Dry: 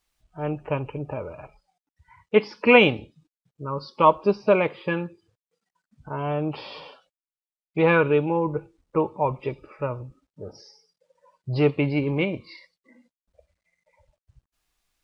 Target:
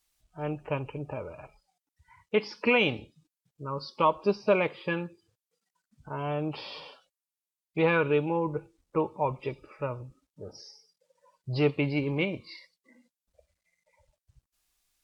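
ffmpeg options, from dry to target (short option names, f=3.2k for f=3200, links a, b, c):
-af "highshelf=f=4k:g=10,alimiter=limit=-8dB:level=0:latency=1:release=107,volume=-5dB" -ar 44100 -c:a libvorbis -b:a 192k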